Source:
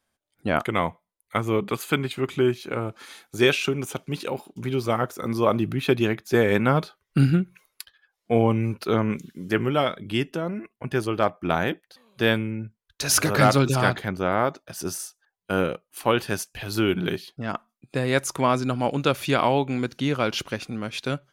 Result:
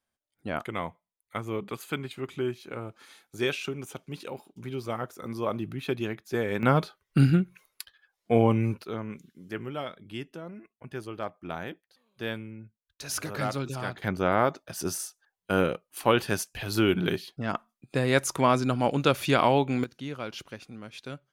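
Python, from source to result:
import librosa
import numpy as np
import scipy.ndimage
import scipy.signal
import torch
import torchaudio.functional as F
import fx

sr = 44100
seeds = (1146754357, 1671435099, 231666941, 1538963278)

y = fx.gain(x, sr, db=fx.steps((0.0, -9.0), (6.63, -1.5), (8.82, -12.5), (14.02, -1.0), (19.84, -12.0)))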